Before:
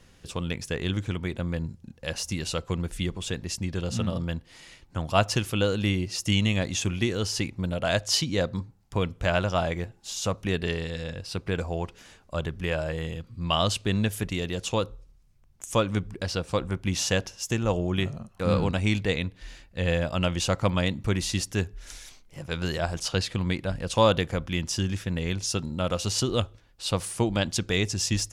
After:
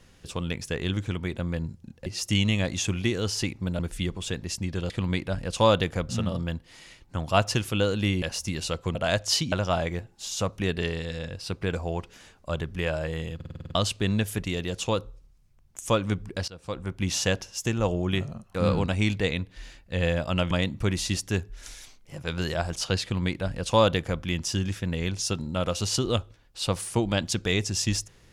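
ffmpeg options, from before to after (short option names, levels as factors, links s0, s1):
-filter_complex "[0:a]asplit=18[s0][s1][s2][s3][s4][s5][s6][s7][s8][s9][s10][s11][s12][s13][s14][s15][s16][s17];[s0]atrim=end=2.062[s18];[s1]atrim=start=6.028:end=7.762[s19];[s2]atrim=start=2.788:end=3.902[s20];[s3]atrim=start=23.268:end=24.462[s21];[s4]atrim=start=3.898:end=6.032[s22];[s5]atrim=start=2.058:end=2.792[s23];[s6]atrim=start=7.758:end=8.332[s24];[s7]atrim=start=9.368:end=13.252[s25];[s8]atrim=start=13.198:end=13.252[s26];[s9]atrim=start=13.198:end=13.252[s27];[s10]atrim=start=13.198:end=13.252[s28];[s11]atrim=start=13.198:end=13.252[s29];[s12]atrim=start=13.198:end=13.252[s30];[s13]atrim=start=13.198:end=13.252[s31];[s14]atrim=start=13.198:end=13.252[s32];[s15]atrim=start=13.598:end=16.33,asetpts=PTS-STARTPTS,afade=t=out:st=2.728:d=0.004:c=hsin:silence=0.0944061[s33];[s16]atrim=start=16.33:end=20.362,asetpts=PTS-STARTPTS,afade=t=in:d=0.59:silence=0.0944061[s34];[s17]atrim=start=20.748[s35];[s18][s19]acrossfade=d=0.004:c1=hsin:c2=hsin[s36];[s36][s20]acrossfade=d=0.004:c1=hsin:c2=hsin[s37];[s37][s21]acrossfade=d=0.004:c1=hsin:c2=hsin[s38];[s38][s22]acrossfade=d=0.004:c1=hsin:c2=hsin[s39];[s39][s23]acrossfade=d=0.004:c1=hsin:c2=hsin[s40];[s40][s24]acrossfade=d=0.004:c1=hsin:c2=hsin[s41];[s41][s25]acrossfade=d=0.004:c1=hsin:c2=hsin[s42];[s42][s26]acrossfade=d=0.004:c1=hsin:c2=hsin[s43];[s43][s27]acrossfade=d=0.004:c1=hsin:c2=hsin[s44];[s44][s28]acrossfade=d=0.004:c1=hsin:c2=hsin[s45];[s45][s29]acrossfade=d=0.004:c1=hsin:c2=hsin[s46];[s46][s30]acrossfade=d=0.004:c1=hsin:c2=hsin[s47];[s47][s31]acrossfade=d=0.004:c1=hsin:c2=hsin[s48];[s48][s32]acrossfade=d=0.004:c1=hsin:c2=hsin[s49];[s33][s34]concat=n=2:v=0:a=1[s50];[s49][s50]acrossfade=d=0.004:c1=hsin:c2=hsin[s51];[s51][s35]acrossfade=d=0.004:c1=hsin:c2=hsin"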